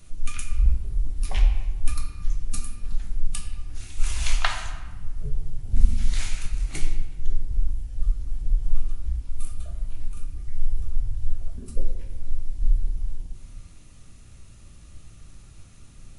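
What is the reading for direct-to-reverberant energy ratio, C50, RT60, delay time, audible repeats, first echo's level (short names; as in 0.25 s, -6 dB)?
2.5 dB, 6.0 dB, 1.3 s, none, none, none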